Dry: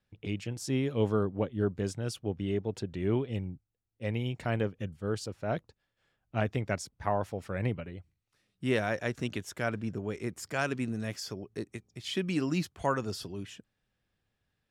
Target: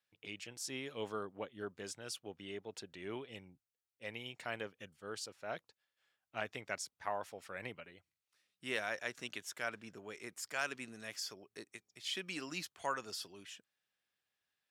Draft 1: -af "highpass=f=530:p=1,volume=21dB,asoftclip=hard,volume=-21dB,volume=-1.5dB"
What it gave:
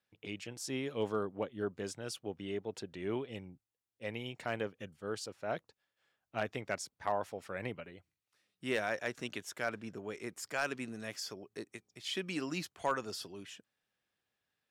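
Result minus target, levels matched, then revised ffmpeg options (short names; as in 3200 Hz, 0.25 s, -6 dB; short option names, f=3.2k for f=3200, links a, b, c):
500 Hz band +3.0 dB
-af "highpass=f=1.5k:p=1,volume=21dB,asoftclip=hard,volume=-21dB,volume=-1.5dB"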